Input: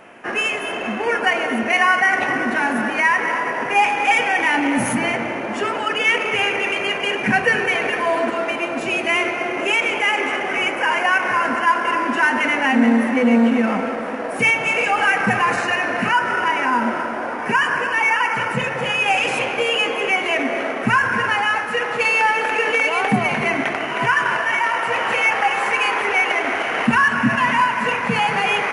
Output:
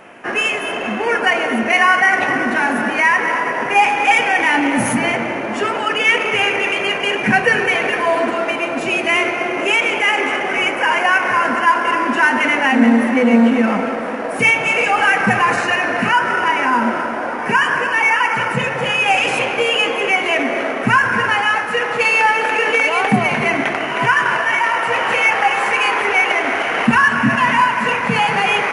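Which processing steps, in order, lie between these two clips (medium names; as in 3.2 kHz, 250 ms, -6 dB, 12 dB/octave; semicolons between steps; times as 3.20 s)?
flange 1.9 Hz, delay 5 ms, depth 2.7 ms, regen -81%; trim +7.5 dB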